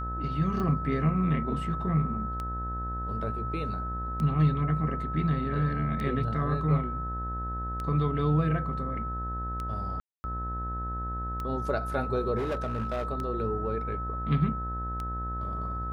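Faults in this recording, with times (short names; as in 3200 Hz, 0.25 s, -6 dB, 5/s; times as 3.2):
buzz 60 Hz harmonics 31 -35 dBFS
tick 33 1/3 rpm -22 dBFS
tone 1300 Hz -34 dBFS
10–10.24 gap 0.24 s
12.37–13.09 clipped -26.5 dBFS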